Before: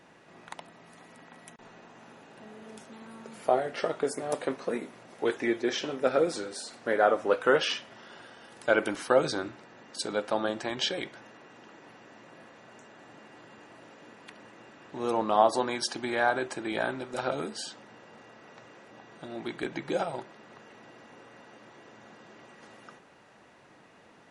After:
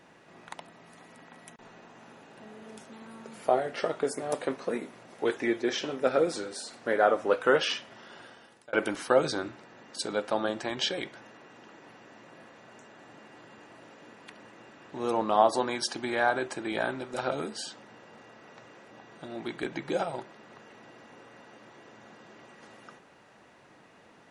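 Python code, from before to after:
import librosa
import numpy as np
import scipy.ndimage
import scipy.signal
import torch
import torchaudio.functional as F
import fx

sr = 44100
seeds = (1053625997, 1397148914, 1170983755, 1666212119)

y = fx.edit(x, sr, fx.fade_out_span(start_s=8.27, length_s=0.46), tone=tone)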